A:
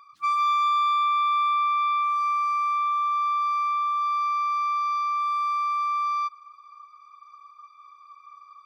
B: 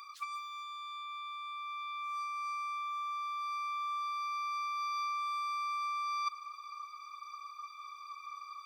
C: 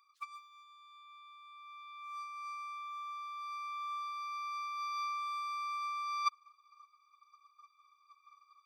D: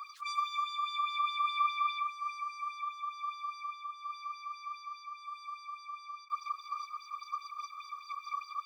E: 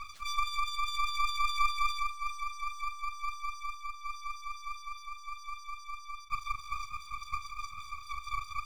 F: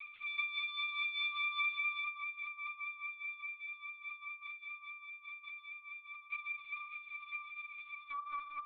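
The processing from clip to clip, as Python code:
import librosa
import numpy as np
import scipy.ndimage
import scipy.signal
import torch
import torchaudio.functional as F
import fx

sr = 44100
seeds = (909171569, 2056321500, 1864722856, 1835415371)

y1 = scipy.signal.sosfilt(scipy.signal.butter(2, 1200.0, 'highpass', fs=sr, output='sos'), x)
y1 = fx.high_shelf(y1, sr, hz=2300.0, db=11.5)
y1 = fx.over_compress(y1, sr, threshold_db=-30.0, ratio=-0.5)
y1 = y1 * 10.0 ** (-5.5 / 20.0)
y2 = fx.upward_expand(y1, sr, threshold_db=-48.0, expansion=2.5)
y2 = y2 * 10.0 ** (4.5 / 20.0)
y3 = fx.over_compress(y2, sr, threshold_db=-53.0, ratio=-1.0)
y3 = fx.bell_lfo(y3, sr, hz=4.9, low_hz=990.0, high_hz=5400.0, db=14)
y3 = y3 * 10.0 ** (6.5 / 20.0)
y4 = np.maximum(y3, 0.0)
y4 = fx.doubler(y4, sr, ms=41.0, db=-12)
y4 = y4 * 10.0 ** (5.5 / 20.0)
y5 = fx.filter_sweep_highpass(y4, sr, from_hz=2300.0, to_hz=130.0, start_s=8.04, end_s=8.55, q=2.6)
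y5 = fx.rev_spring(y5, sr, rt60_s=1.4, pass_ms=(38, 58), chirp_ms=35, drr_db=10.5)
y5 = fx.lpc_vocoder(y5, sr, seeds[0], excitation='pitch_kept', order=8)
y5 = y5 * 10.0 ** (-6.0 / 20.0)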